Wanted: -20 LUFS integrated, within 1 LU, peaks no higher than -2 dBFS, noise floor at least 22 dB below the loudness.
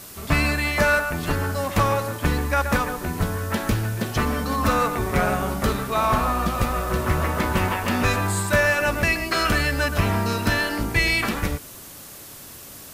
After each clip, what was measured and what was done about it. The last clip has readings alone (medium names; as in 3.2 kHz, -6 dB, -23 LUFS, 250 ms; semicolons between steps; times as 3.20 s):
noise floor -41 dBFS; noise floor target -45 dBFS; loudness -22.5 LUFS; peak level -9.5 dBFS; loudness target -20.0 LUFS
-> noise print and reduce 6 dB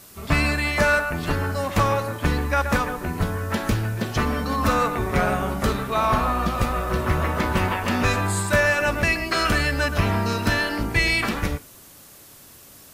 noise floor -47 dBFS; loudness -22.5 LUFS; peak level -9.5 dBFS; loudness target -20.0 LUFS
-> trim +2.5 dB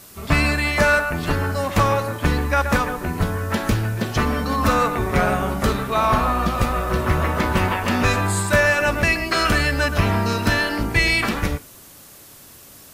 loudness -20.0 LUFS; peak level -7.0 dBFS; noise floor -45 dBFS